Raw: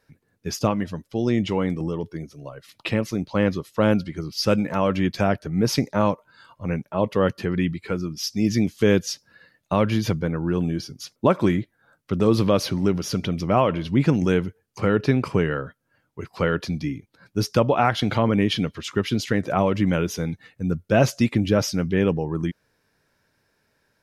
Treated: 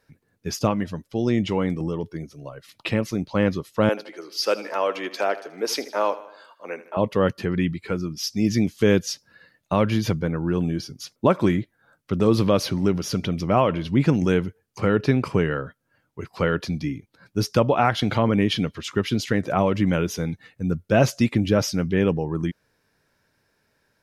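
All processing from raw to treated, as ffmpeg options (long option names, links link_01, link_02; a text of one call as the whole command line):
ffmpeg -i in.wav -filter_complex "[0:a]asettb=1/sr,asplit=3[link_01][link_02][link_03];[link_01]atrim=end=3.894[link_04];[link_02]atrim=start=3.89:end=6.97,asetpts=PTS-STARTPTS,afade=type=in:duration=0.004:curve=qsin,afade=type=out:start_time=3.076:duration=0.004:curve=qsin,highpass=frequency=380:width=0.5412,highpass=frequency=380:width=1.3066,aecho=1:1:79|158|237|316|395:0.158|0.0856|0.0462|0.025|0.0135,atrim=end_sample=135828[link_05];[link_03]atrim=start=6.966[link_06];[link_04][link_05]acrossfade=duration=0.004:curve1=hsin:curve2=qsin[link_07];[link_07][link_06]acrossfade=duration=0.004:curve1=qsin:curve2=hsin" out.wav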